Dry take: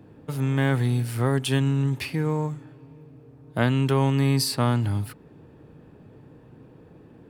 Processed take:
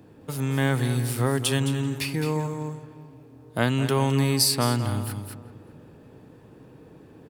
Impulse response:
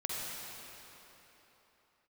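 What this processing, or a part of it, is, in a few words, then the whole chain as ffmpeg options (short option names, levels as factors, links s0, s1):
ducked delay: -filter_complex "[0:a]bass=f=250:g=-3,treble=f=4000:g=7,asplit=3[s0][s1][s2];[s1]adelay=214,volume=0.708[s3];[s2]apad=whole_len=331021[s4];[s3][s4]sidechaincompress=threshold=0.0447:ratio=8:attack=27:release=882[s5];[s0][s5]amix=inputs=2:normalize=0,asplit=2[s6][s7];[s7]adelay=384,lowpass=f=1300:p=1,volume=0.178,asplit=2[s8][s9];[s9]adelay=384,lowpass=f=1300:p=1,volume=0.31,asplit=2[s10][s11];[s11]adelay=384,lowpass=f=1300:p=1,volume=0.31[s12];[s6][s8][s10][s12]amix=inputs=4:normalize=0"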